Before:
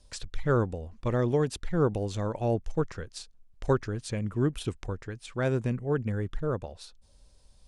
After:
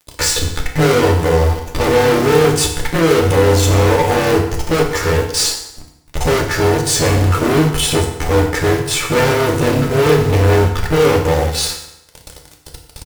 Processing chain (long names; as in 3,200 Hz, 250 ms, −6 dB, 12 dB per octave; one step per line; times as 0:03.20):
low-shelf EQ 78 Hz −8.5 dB
comb filter 2.3 ms, depth 64%
dynamic equaliser 3,300 Hz, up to −4 dB, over −52 dBFS, Q 1.1
in parallel at 0 dB: downward compressor 12 to 1, threshold −37 dBFS, peak gain reduction 19.5 dB
on the sum: floating-point word with a short mantissa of 2 bits
time stretch by overlap-add 1.7×, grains 60 ms
fuzz pedal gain 42 dB, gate −49 dBFS
on a send at −1 dB: convolution reverb RT60 0.85 s, pre-delay 3 ms
on the sum: level −1 dB